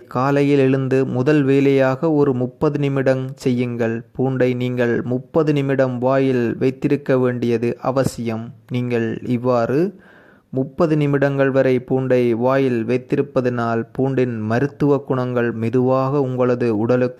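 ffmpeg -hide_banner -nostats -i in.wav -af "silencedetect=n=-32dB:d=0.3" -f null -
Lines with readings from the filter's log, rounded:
silence_start: 9.91
silence_end: 10.53 | silence_duration: 0.62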